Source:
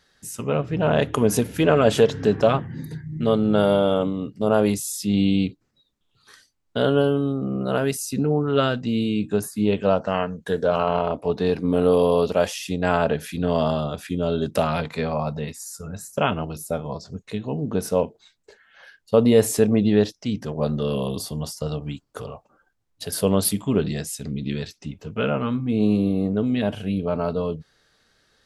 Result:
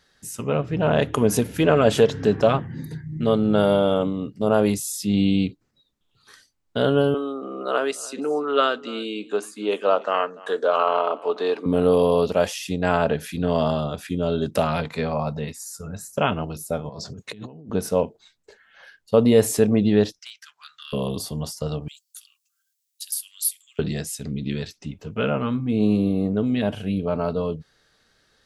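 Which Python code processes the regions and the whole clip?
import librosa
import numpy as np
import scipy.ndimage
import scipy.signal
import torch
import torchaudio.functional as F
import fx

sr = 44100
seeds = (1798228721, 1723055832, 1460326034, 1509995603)

y = fx.chain(x, sr, fx.cabinet(low_hz=320.0, low_slope=24, high_hz=9100.0, hz=(1200.0, 3300.0, 5400.0), db=(8, 3, -5)),
    fx.echo_single(ms=291, db=-21.0), at=(7.14, 11.66))
y = fx.chain(y, sr, fx.over_compress(threshold_db=-38.0, ratio=-1.0),
    fx.highpass(hz=89.0, slope=12), at=(16.89, 17.7))
y = fx.chain(y, sr, fx.ellip_highpass(hz=1400.0, order=4, stop_db=60),
    fx.clip_hard(threshold_db=-28.5), at=(20.19, 20.93))
y = fx.chain(y, sr, fx.bessel_highpass(hz=2800.0, order=8),
    fx.differentiator(),
    fx.band_squash(depth_pct=40), at=(21.88, 23.79))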